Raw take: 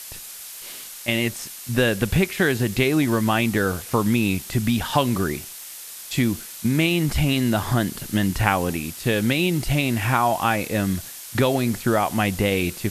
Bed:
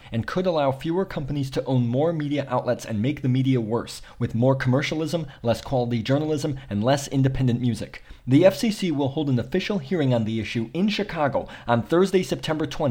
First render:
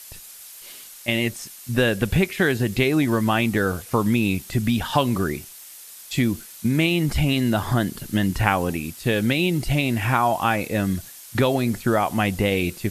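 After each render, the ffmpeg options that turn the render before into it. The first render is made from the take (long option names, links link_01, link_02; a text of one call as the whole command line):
ffmpeg -i in.wav -af "afftdn=noise_reduction=6:noise_floor=-38" out.wav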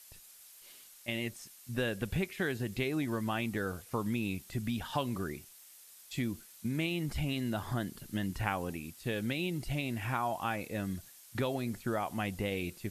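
ffmpeg -i in.wav -af "volume=-13.5dB" out.wav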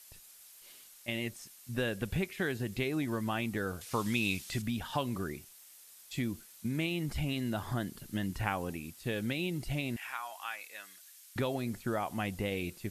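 ffmpeg -i in.wav -filter_complex "[0:a]asettb=1/sr,asplit=3[link_01][link_02][link_03];[link_01]atrim=end=3.814[link_04];[link_02]atrim=start=3.81:end=4.62,asetpts=PTS-STARTPTS,afade=type=in:duration=0.004:curve=qsin,afade=type=out:start_time=0.806:duration=0.004:curve=qsin,equalizer=frequency=4400:width_type=o:width=3:gain=11[link_05];[link_03]atrim=start=4.616[link_06];[link_04][link_05]acrossfade=duration=0.004:curve1=hsin:curve2=qsin[link_07];[link_07][link_06]acrossfade=duration=0.004:curve1=qsin:curve2=hsin,asettb=1/sr,asplit=3[link_08][link_09][link_10];[link_08]atrim=end=9.964[link_11];[link_09]atrim=start=9.96:end=11.36,asetpts=PTS-STARTPTS,afade=type=in:duration=0.004:curve=qsin,afade=type=out:start_time=1.396:duration=0.004:curve=qsin,highpass=1400[link_12];[link_10]atrim=start=11.356[link_13];[link_11][link_12]acrossfade=duration=0.004:curve1=hsin:curve2=qsin[link_14];[link_14][link_13]acrossfade=duration=0.004:curve1=qsin:curve2=hsin" out.wav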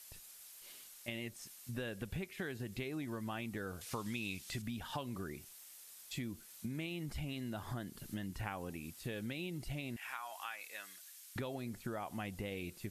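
ffmpeg -i in.wav -af "acompressor=threshold=-42dB:ratio=2.5" out.wav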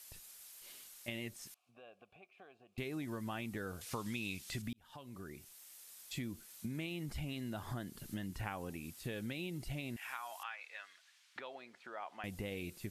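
ffmpeg -i in.wav -filter_complex "[0:a]asettb=1/sr,asplit=3[link_01][link_02][link_03];[link_01]atrim=end=1.544[link_04];[link_02]atrim=start=1.54:end=2.78,asetpts=PTS-STARTPTS,afade=type=in:duration=0.004:curve=qsin,afade=type=out:start_time=1.236:duration=0.004:curve=qsin,asplit=3[link_05][link_06][link_07];[link_05]bandpass=frequency=730:width_type=q:width=8,volume=0dB[link_08];[link_06]bandpass=frequency=1090:width_type=q:width=8,volume=-6dB[link_09];[link_07]bandpass=frequency=2440:width_type=q:width=8,volume=-9dB[link_10];[link_08][link_09][link_10]amix=inputs=3:normalize=0[link_11];[link_03]atrim=start=2.776[link_12];[link_04][link_11]acrossfade=duration=0.004:curve1=hsin:curve2=qsin[link_13];[link_13][link_12]acrossfade=duration=0.004:curve1=qsin:curve2=hsin,asettb=1/sr,asplit=3[link_14][link_15][link_16];[link_14]atrim=end=10.434[link_17];[link_15]atrim=start=10.43:end=12.24,asetpts=PTS-STARTPTS,afade=type=in:duration=0.004:curve=qsin,afade=type=out:start_time=1.806:duration=0.004:curve=qsin,highpass=670,lowpass=3400[link_18];[link_16]atrim=start=12.236[link_19];[link_17][link_18]acrossfade=duration=0.004:curve1=hsin:curve2=qsin[link_20];[link_20][link_19]acrossfade=duration=0.004:curve1=qsin:curve2=hsin,asplit=2[link_21][link_22];[link_21]atrim=end=4.73,asetpts=PTS-STARTPTS,afade=type=out:start_time=4.726:duration=0.004:curve=hsin[link_23];[link_22]atrim=start=4.73,asetpts=PTS-STARTPTS,afade=type=in:duration=1.4:curve=qsin[link_24];[link_23][link_24]concat=n=2:v=0:a=1" out.wav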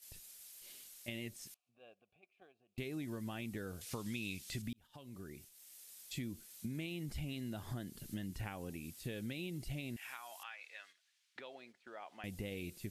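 ffmpeg -i in.wav -af "agate=range=-9dB:threshold=-57dB:ratio=16:detection=peak,equalizer=frequency=1100:width_type=o:width=1.5:gain=-7" out.wav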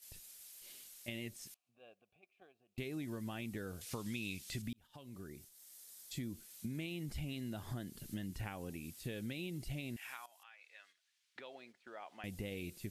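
ffmpeg -i in.wav -filter_complex "[0:a]asettb=1/sr,asplit=3[link_01][link_02][link_03];[link_01]atrim=end=5.274[link_04];[link_02]atrim=start=5.27:end=6.32,asetpts=PTS-STARTPTS,afade=type=in:duration=0.004:curve=qsin,afade=type=out:start_time=1.046:duration=0.004:curve=qsin,equalizer=frequency=2600:width=2.5:gain=-6[link_05];[link_03]atrim=start=6.316[link_06];[link_04][link_05]acrossfade=duration=0.004:curve1=hsin:curve2=qsin[link_07];[link_07][link_06]acrossfade=duration=0.004:curve1=qsin:curve2=hsin,asplit=2[link_08][link_09];[link_08]atrim=end=10.26,asetpts=PTS-STARTPTS,afade=type=out:start_time=10.256:duration=0.004:curve=hsin:silence=0.158489[link_10];[link_09]atrim=start=10.26,asetpts=PTS-STARTPTS,afade=type=in:duration=1.3:silence=0.158489[link_11];[link_10][link_11]concat=n=2:v=0:a=1" out.wav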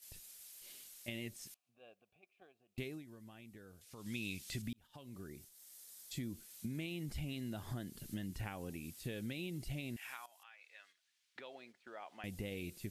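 ffmpeg -i in.wav -filter_complex "[0:a]asplit=3[link_01][link_02][link_03];[link_01]atrim=end=3.04,asetpts=PTS-STARTPTS,afade=type=out:start_time=2.83:duration=0.21:silence=0.237137[link_04];[link_02]atrim=start=3.04:end=3.95,asetpts=PTS-STARTPTS,volume=-12.5dB[link_05];[link_03]atrim=start=3.95,asetpts=PTS-STARTPTS,afade=type=in:duration=0.21:silence=0.237137[link_06];[link_04][link_05][link_06]concat=n=3:v=0:a=1" out.wav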